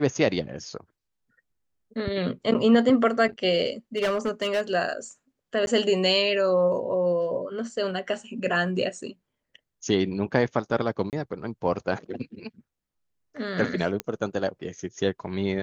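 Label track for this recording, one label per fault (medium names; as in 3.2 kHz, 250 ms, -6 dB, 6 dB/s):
3.970000	4.610000	clipped -20.5 dBFS
5.660000	5.670000	dropout 11 ms
11.100000	11.130000	dropout 28 ms
14.000000	14.000000	pop -13 dBFS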